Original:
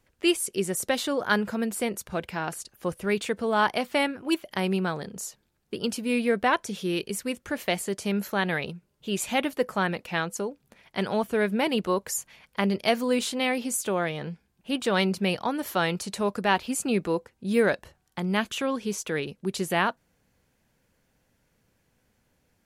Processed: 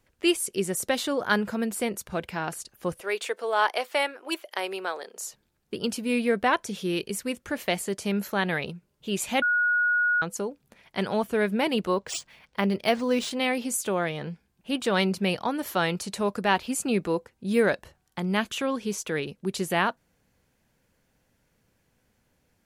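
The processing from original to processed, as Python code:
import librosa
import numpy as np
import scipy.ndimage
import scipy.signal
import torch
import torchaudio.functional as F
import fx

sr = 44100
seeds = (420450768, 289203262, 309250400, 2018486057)

y = fx.highpass(x, sr, hz=410.0, slope=24, at=(3.0, 5.26))
y = fx.resample_linear(y, sr, factor=3, at=(11.94, 13.31))
y = fx.edit(y, sr, fx.bleep(start_s=9.42, length_s=0.8, hz=1450.0, db=-20.0), tone=tone)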